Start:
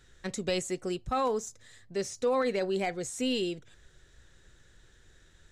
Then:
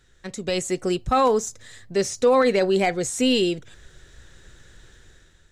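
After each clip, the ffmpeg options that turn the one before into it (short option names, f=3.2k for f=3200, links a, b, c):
-af "dynaudnorm=f=170:g=7:m=10dB"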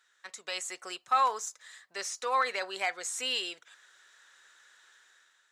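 -af "highpass=f=1.1k:t=q:w=1.6,volume=-6.5dB"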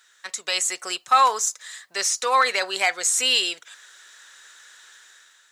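-af "highshelf=f=3.2k:g=8,volume=8dB"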